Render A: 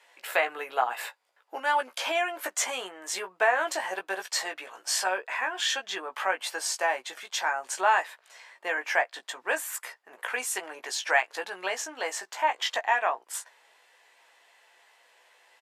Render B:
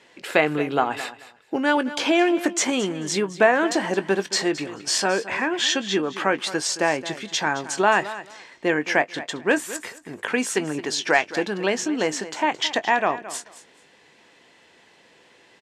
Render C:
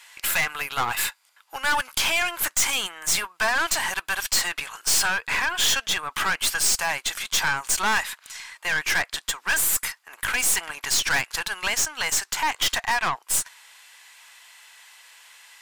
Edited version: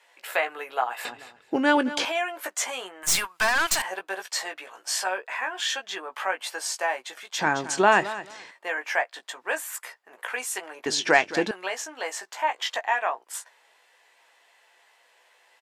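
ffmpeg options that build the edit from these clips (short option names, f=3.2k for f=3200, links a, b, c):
-filter_complex "[1:a]asplit=3[a][b][c];[0:a]asplit=5[d][e][f][g][h];[d]atrim=end=1.052[i];[a]atrim=start=1.048:end=2.052[j];[e]atrim=start=2.048:end=3.032[k];[2:a]atrim=start=3.028:end=3.822[l];[f]atrim=start=3.818:end=7.392[m];[b]atrim=start=7.388:end=8.512[n];[g]atrim=start=8.508:end=10.862[o];[c]atrim=start=10.858:end=11.512[p];[h]atrim=start=11.508[q];[i][j]acrossfade=d=0.004:c1=hsin:c2=hsin[r];[r][k]acrossfade=d=0.004:c1=hsin:c2=hsin[s];[s][l]acrossfade=d=0.004:c1=hsin:c2=hsin[t];[t][m]acrossfade=d=0.004:c1=hsin:c2=hsin[u];[u][n]acrossfade=d=0.004:c1=hsin:c2=hsin[v];[v][o]acrossfade=d=0.004:c1=hsin:c2=hsin[w];[w][p]acrossfade=d=0.004:c1=hsin:c2=hsin[x];[x][q]acrossfade=d=0.004:c1=hsin:c2=hsin"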